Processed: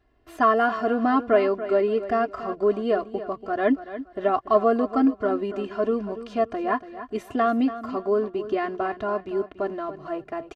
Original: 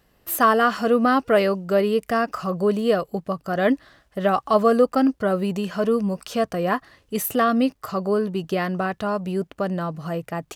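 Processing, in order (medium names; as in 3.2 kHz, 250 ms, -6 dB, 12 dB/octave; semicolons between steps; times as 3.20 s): comb 2.9 ms, depth 97%; in parallel at -12 dB: small samples zeroed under -30.5 dBFS; on the sum: tape spacing loss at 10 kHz 26 dB; feedback delay 285 ms, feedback 27%, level -13 dB; trim -5 dB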